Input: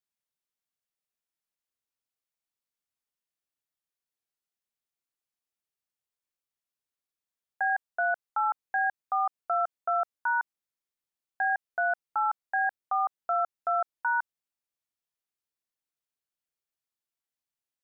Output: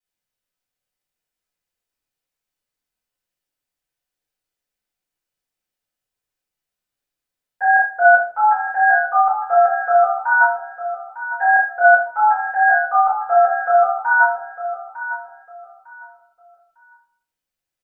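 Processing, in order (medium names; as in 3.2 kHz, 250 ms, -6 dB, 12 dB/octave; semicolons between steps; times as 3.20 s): on a send: feedback delay 903 ms, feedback 27%, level -8 dB; on the sum: simulated room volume 120 m³, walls mixed, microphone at 4.9 m; upward expansion 1.5:1, over -23 dBFS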